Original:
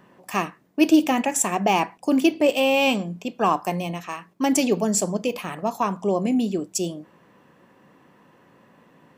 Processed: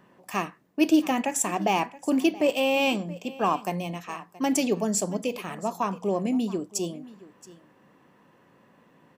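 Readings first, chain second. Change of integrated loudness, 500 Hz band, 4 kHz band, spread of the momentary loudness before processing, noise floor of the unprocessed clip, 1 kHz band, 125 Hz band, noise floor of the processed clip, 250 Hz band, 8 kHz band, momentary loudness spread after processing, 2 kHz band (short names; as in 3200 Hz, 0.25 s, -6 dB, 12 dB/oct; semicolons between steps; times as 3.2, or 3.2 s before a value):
-4.0 dB, -4.0 dB, -4.0 dB, 11 LU, -57 dBFS, -4.0 dB, -4.0 dB, -60 dBFS, -4.0 dB, -4.0 dB, 10 LU, -4.0 dB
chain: echo 0.675 s -19.5 dB; gain -4 dB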